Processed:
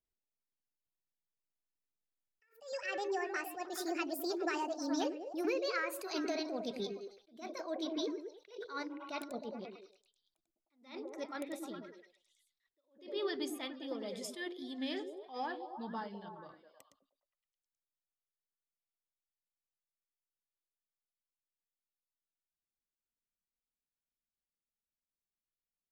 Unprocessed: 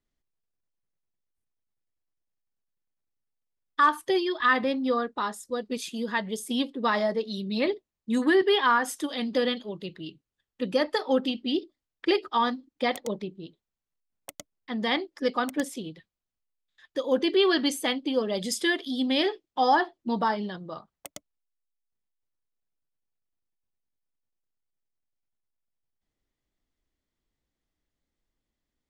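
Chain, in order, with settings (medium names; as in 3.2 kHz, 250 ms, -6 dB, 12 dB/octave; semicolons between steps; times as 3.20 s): gliding tape speed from 154% -> 69%; Doppler pass-by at 5.87 s, 15 m/s, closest 6.5 m; compression 16:1, threshold -44 dBFS, peak gain reduction 26 dB; on a send: repeats whose band climbs or falls 104 ms, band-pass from 290 Hz, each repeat 0.7 oct, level -2.5 dB; on the sum: attacks held to a fixed rise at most 150 dB/s; trim +10.5 dB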